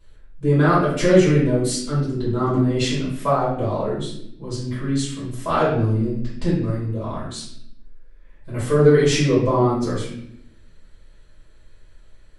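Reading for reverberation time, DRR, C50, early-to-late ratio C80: 0.75 s, -10.5 dB, 1.0 dB, 5.5 dB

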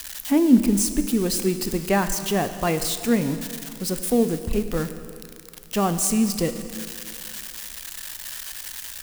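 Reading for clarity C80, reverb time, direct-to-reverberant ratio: 11.0 dB, 2.5 s, 9.0 dB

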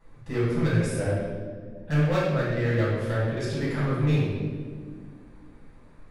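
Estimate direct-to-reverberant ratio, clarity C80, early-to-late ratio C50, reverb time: -10.5 dB, 1.5 dB, -1.5 dB, 1.8 s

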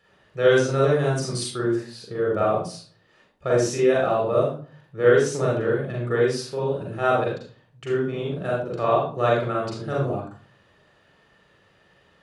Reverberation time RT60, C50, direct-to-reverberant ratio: 0.40 s, 2.0 dB, -4.5 dB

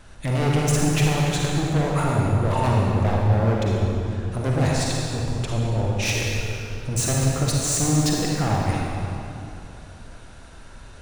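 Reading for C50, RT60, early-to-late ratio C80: -2.0 dB, 2.8 s, -0.5 dB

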